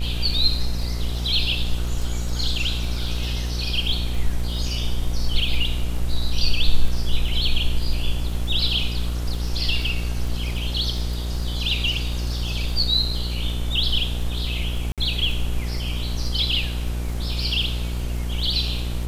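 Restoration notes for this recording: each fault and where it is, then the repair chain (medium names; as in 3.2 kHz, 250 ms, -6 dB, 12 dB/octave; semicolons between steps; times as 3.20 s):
buzz 60 Hz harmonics 25 -26 dBFS
crackle 21 per s -29 dBFS
14.92–14.98 s: dropout 57 ms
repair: de-click; de-hum 60 Hz, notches 25; interpolate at 14.92 s, 57 ms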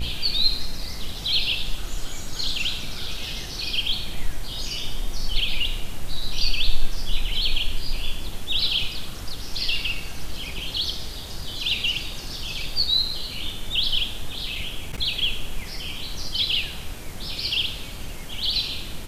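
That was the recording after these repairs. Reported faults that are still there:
nothing left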